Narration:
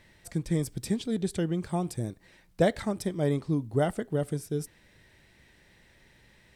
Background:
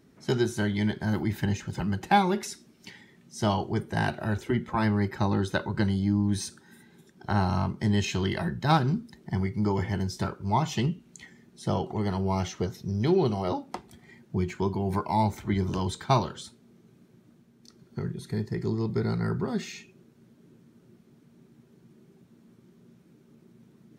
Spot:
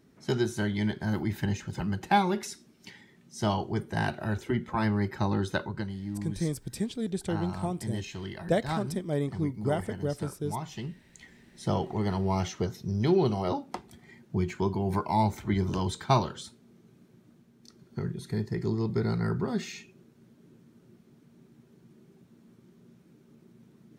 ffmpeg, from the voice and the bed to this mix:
-filter_complex "[0:a]adelay=5900,volume=-2.5dB[a];[1:a]volume=8dB,afade=t=out:st=5.6:d=0.26:silence=0.375837,afade=t=in:st=10.92:d=0.63:silence=0.316228[b];[a][b]amix=inputs=2:normalize=0"

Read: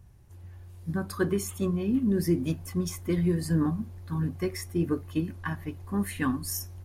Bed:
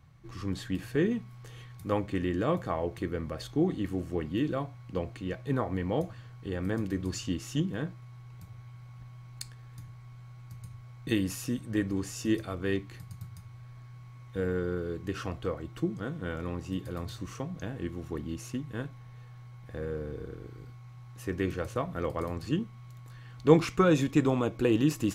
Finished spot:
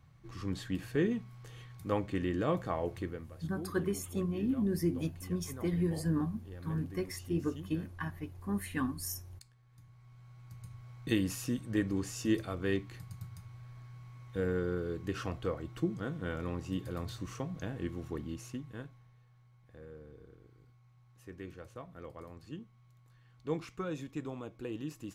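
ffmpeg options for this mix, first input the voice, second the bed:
-filter_complex "[0:a]adelay=2550,volume=-6dB[a];[1:a]volume=11.5dB,afade=t=out:st=2.95:d=0.34:silence=0.211349,afade=t=in:st=9.65:d=1.26:silence=0.188365,afade=t=out:st=17.95:d=1.25:silence=0.223872[b];[a][b]amix=inputs=2:normalize=0"

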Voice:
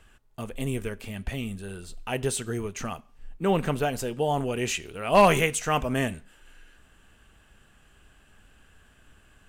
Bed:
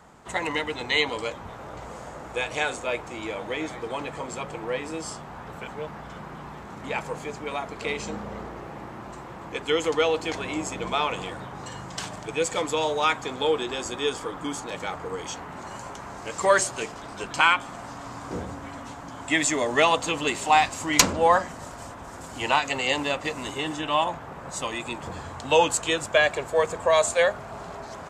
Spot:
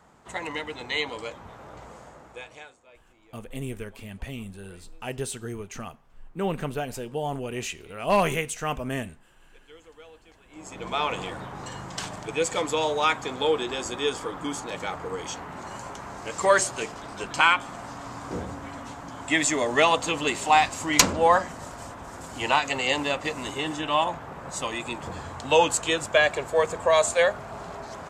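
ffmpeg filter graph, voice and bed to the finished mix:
-filter_complex "[0:a]adelay=2950,volume=-4dB[a];[1:a]volume=21.5dB,afade=t=out:st=1.81:d=0.94:silence=0.0841395,afade=t=in:st=10.5:d=0.6:silence=0.0473151[b];[a][b]amix=inputs=2:normalize=0"

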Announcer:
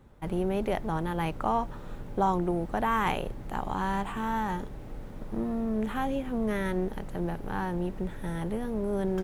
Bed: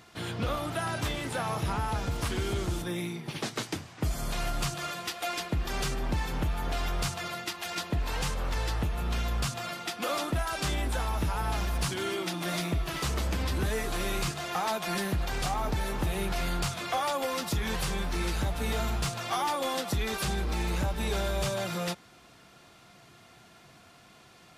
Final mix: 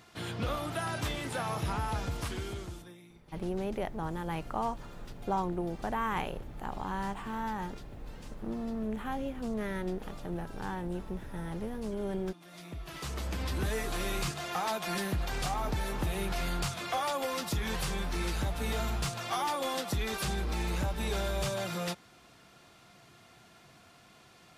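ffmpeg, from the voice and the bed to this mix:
-filter_complex "[0:a]adelay=3100,volume=-5.5dB[a];[1:a]volume=16dB,afade=t=out:st=1.98:d=1:silence=0.11885,afade=t=in:st=12.5:d=1.18:silence=0.11885[b];[a][b]amix=inputs=2:normalize=0"

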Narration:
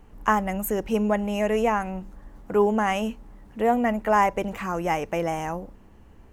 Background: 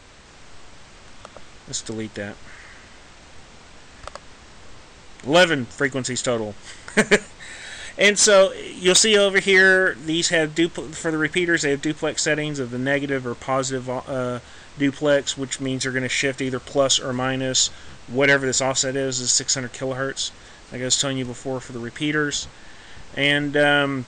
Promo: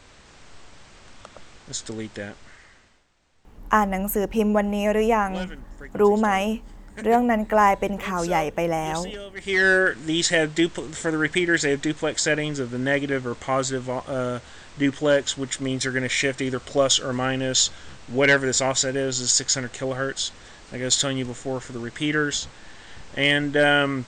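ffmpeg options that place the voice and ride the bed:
-filter_complex "[0:a]adelay=3450,volume=2.5dB[a];[1:a]volume=17dB,afade=t=out:st=2.22:d=0.84:silence=0.125893,afade=t=in:st=9.36:d=0.44:silence=0.1[b];[a][b]amix=inputs=2:normalize=0"

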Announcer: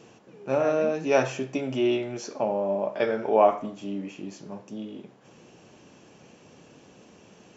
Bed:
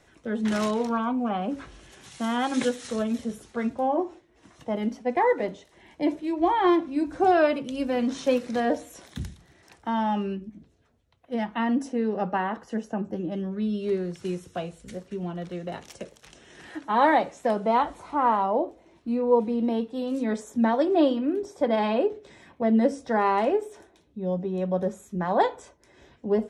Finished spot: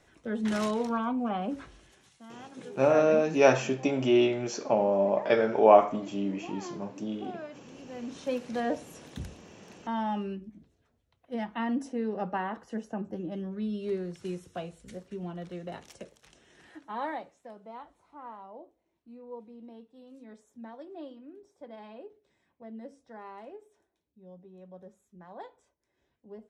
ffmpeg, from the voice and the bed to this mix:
-filter_complex "[0:a]adelay=2300,volume=1.5dB[a];[1:a]volume=12.5dB,afade=t=out:st=1.56:d=0.64:silence=0.125893,afade=t=in:st=7.82:d=0.77:silence=0.158489,afade=t=out:st=15.8:d=1.66:silence=0.141254[b];[a][b]amix=inputs=2:normalize=0"

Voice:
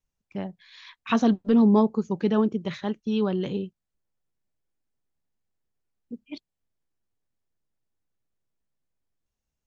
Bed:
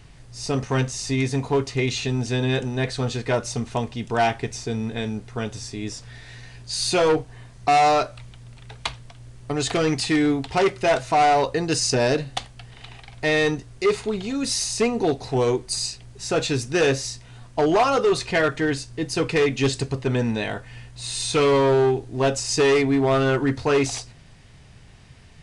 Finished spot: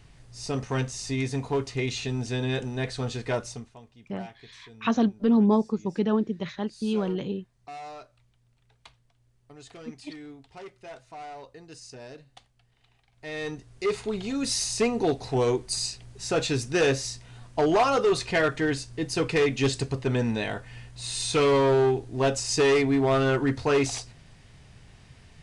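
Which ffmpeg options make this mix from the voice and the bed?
-filter_complex "[0:a]adelay=3750,volume=-2dB[a];[1:a]volume=15dB,afade=t=out:st=3.37:d=0.35:silence=0.125893,afade=t=in:st=13.13:d=1.16:silence=0.0944061[b];[a][b]amix=inputs=2:normalize=0"

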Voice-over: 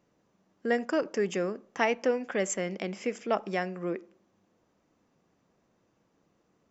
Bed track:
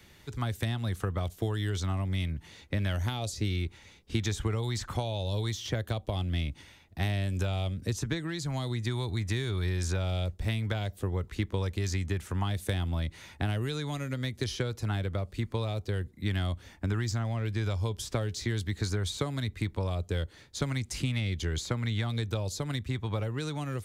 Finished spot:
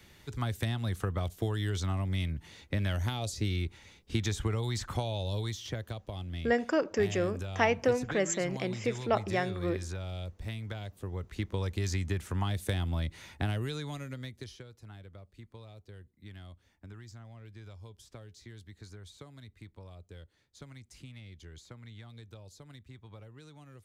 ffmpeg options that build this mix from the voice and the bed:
-filter_complex "[0:a]adelay=5800,volume=0dB[a];[1:a]volume=6dB,afade=t=out:st=5.13:d=0.85:silence=0.446684,afade=t=in:st=11:d=0.78:silence=0.446684,afade=t=out:st=13.41:d=1.23:silence=0.141254[b];[a][b]amix=inputs=2:normalize=0"

